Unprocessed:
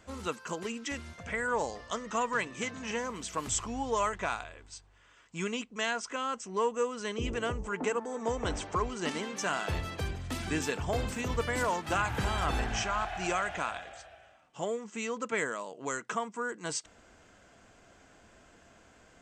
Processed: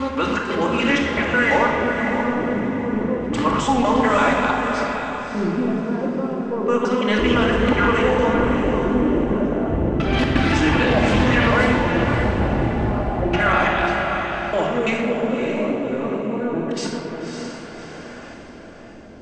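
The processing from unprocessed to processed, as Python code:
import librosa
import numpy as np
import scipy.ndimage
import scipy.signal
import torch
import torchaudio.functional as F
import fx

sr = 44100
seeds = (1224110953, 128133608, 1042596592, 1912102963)

p1 = fx.local_reverse(x, sr, ms=167.0)
p2 = fx.low_shelf(p1, sr, hz=120.0, db=-10.0)
p3 = fx.over_compress(p2, sr, threshold_db=-37.0, ratio=-1.0)
p4 = p2 + F.gain(torch.from_numpy(p3), 0.0).numpy()
p5 = 10.0 ** (-18.5 / 20.0) * np.tanh(p4 / 10.0 ** (-18.5 / 20.0))
p6 = fx.filter_lfo_lowpass(p5, sr, shape='square', hz=0.3, low_hz=460.0, high_hz=3200.0, q=0.82)
p7 = fx.echo_diffused(p6, sr, ms=586, feedback_pct=41, wet_db=-6.0)
p8 = fx.room_shoebox(p7, sr, seeds[0], volume_m3=1700.0, walls='mixed', distance_m=2.4)
p9 = fx.doppler_dist(p8, sr, depth_ms=0.16)
y = F.gain(torch.from_numpy(p9), 8.5).numpy()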